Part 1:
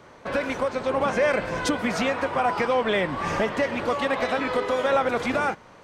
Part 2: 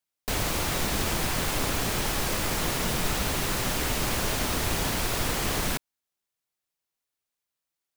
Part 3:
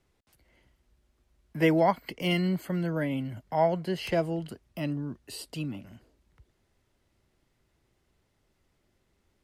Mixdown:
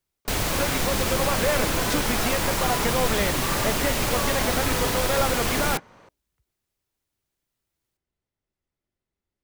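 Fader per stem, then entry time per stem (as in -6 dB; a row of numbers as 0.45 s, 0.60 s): -3.0 dB, +2.5 dB, -16.0 dB; 0.25 s, 0.00 s, 0.00 s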